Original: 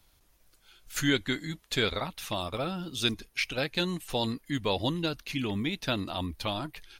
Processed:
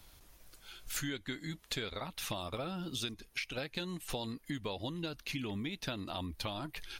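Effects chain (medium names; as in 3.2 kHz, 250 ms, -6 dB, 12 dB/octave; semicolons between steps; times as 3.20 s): compression 10:1, threshold -42 dBFS, peak gain reduction 20.5 dB; trim +6 dB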